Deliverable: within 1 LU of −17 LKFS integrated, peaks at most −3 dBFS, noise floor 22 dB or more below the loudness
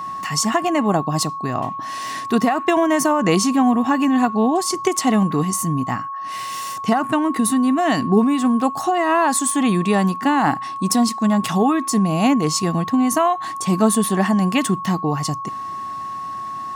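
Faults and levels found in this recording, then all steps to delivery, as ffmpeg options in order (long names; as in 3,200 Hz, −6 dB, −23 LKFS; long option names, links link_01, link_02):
interfering tone 1,100 Hz; level of the tone −26 dBFS; integrated loudness −19.0 LKFS; sample peak −3.0 dBFS; target loudness −17.0 LKFS
→ -af "bandreject=frequency=1100:width=30"
-af "volume=2dB,alimiter=limit=-3dB:level=0:latency=1"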